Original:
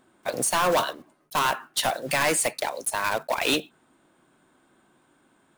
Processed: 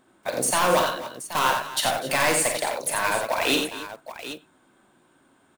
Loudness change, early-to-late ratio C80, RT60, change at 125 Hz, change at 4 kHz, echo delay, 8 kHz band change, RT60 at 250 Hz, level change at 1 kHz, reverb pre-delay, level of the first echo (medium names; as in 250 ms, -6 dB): +2.0 dB, no reverb, no reverb, +2.0 dB, +2.0 dB, 45 ms, +2.0 dB, no reverb, +2.0 dB, no reverb, -8.0 dB